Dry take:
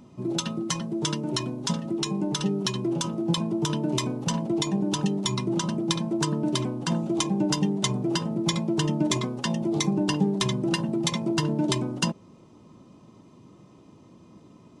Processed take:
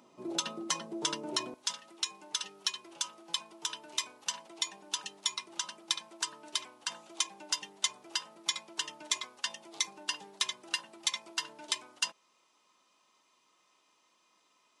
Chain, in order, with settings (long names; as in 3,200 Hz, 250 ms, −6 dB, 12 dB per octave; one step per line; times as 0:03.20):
high-pass filter 480 Hz 12 dB per octave, from 0:01.54 1,500 Hz
level −2.5 dB